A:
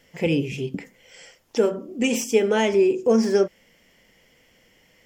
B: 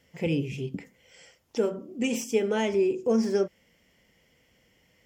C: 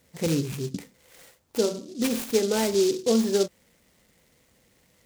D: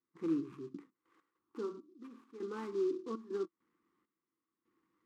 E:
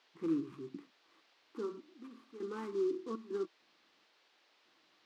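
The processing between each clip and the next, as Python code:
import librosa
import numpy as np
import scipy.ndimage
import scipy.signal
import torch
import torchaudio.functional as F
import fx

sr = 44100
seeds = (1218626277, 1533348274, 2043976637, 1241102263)

y1 = scipy.signal.sosfilt(scipy.signal.butter(2, 64.0, 'highpass', fs=sr, output='sos'), x)
y1 = fx.low_shelf(y1, sr, hz=110.0, db=12.0)
y1 = fx.notch(y1, sr, hz=1700.0, q=29.0)
y1 = y1 * librosa.db_to_amplitude(-7.0)
y2 = fx.noise_mod_delay(y1, sr, seeds[0], noise_hz=5000.0, depth_ms=0.088)
y2 = y2 * librosa.db_to_amplitude(2.0)
y3 = fx.step_gate(y2, sr, bpm=100, pattern='.xxxxx.x.xxx...', floor_db=-12.0, edge_ms=4.5)
y3 = fx.double_bandpass(y3, sr, hz=610.0, octaves=1.8)
y3 = y3 * librosa.db_to_amplitude(-2.0)
y4 = fx.dmg_noise_band(y3, sr, seeds[1], low_hz=320.0, high_hz=4600.0, level_db=-71.0)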